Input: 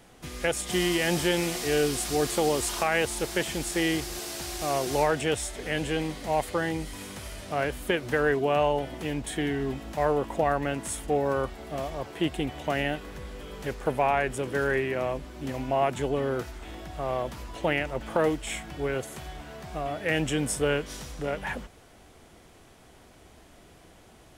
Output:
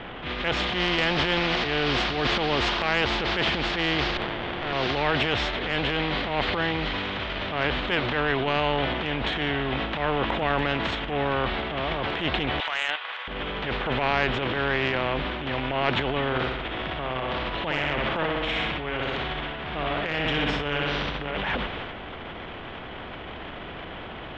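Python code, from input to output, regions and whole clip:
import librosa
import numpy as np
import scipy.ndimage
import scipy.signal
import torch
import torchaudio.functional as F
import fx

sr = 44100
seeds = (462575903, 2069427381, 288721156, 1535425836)

y = fx.chain(x, sr, fx.highpass(hz=270.0, slope=6),
    fx.running_max(window=33), at=(4.17, 4.73))
y = fx.chain(y, sr, fx.highpass(hz=980.0, slope=24),
    fx.transient(attack_db=0, sustain_db=-10), at=(12.6, 13.28))
y = fx.chain(y, sr, fx.room_flutter(wall_m=10.6, rt60_s=0.75),
    fx.tremolo(hz=1.7, depth=0.65), at=(16.26, 21.37))
y = scipy.signal.sosfilt(scipy.signal.ellip(4, 1.0, 70, 3300.0, 'lowpass', fs=sr, output='sos'), y)
y = fx.transient(y, sr, attack_db=-9, sustain_db=8)
y = fx.spectral_comp(y, sr, ratio=2.0)
y = y * librosa.db_to_amplitude(5.0)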